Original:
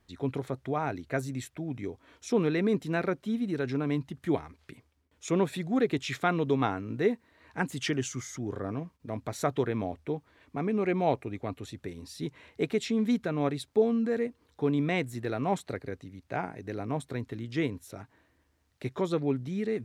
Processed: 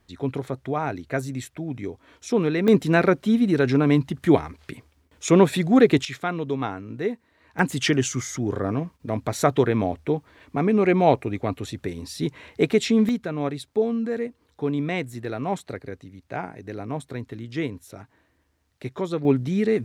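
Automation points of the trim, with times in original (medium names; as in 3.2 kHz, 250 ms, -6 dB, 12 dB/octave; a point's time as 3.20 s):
+4.5 dB
from 2.68 s +11 dB
from 6.05 s 0 dB
from 7.59 s +9 dB
from 13.09 s +2 dB
from 19.25 s +9.5 dB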